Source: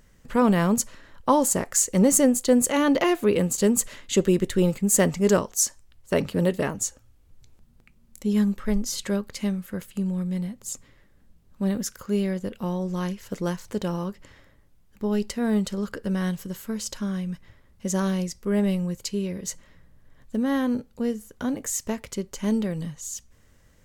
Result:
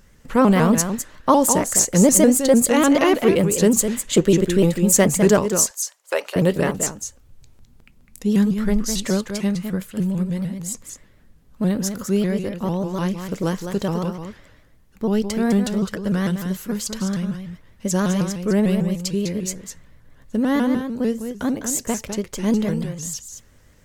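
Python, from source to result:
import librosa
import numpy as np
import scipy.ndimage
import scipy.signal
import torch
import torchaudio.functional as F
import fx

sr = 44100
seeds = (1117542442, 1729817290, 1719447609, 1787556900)

p1 = fx.highpass(x, sr, hz=540.0, slope=24, at=(5.5, 6.36))
p2 = p1 + fx.echo_single(p1, sr, ms=206, db=-8.0, dry=0)
p3 = fx.vibrato_shape(p2, sr, shape='saw_up', rate_hz=6.7, depth_cents=160.0)
y = p3 * 10.0 ** (4.5 / 20.0)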